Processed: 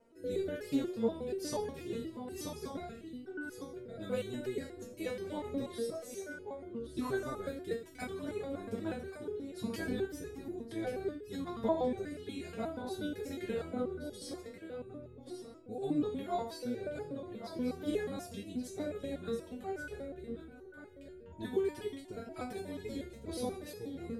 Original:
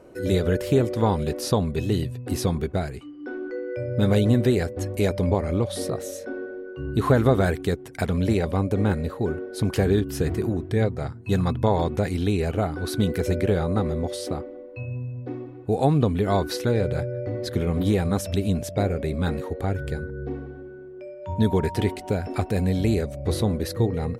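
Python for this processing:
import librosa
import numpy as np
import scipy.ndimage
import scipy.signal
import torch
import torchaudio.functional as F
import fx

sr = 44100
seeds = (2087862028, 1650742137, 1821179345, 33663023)

y = fx.rotary(x, sr, hz=1.1)
y = y + 10.0 ** (-9.0 / 20.0) * np.pad(y, (int(1132 * sr / 1000.0), 0))[:len(y)]
y = fx.rev_gated(y, sr, seeds[0], gate_ms=210, shape='falling', drr_db=6.5)
y = fx.resonator_held(y, sr, hz=8.3, low_hz=230.0, high_hz=420.0)
y = F.gain(torch.from_numpy(y), 2.5).numpy()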